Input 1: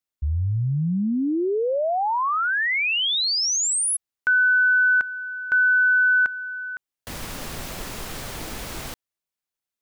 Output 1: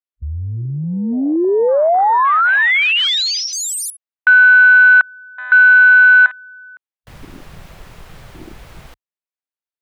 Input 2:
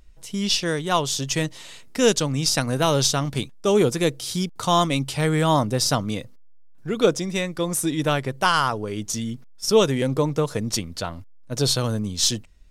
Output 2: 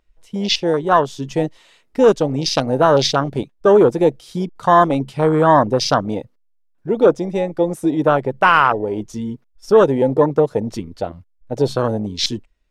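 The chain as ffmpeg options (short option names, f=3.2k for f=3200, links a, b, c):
-af "afwtdn=0.0562,apsyclip=13.5dB,bass=f=250:g=-11,treble=f=4k:g=-9,volume=-3dB"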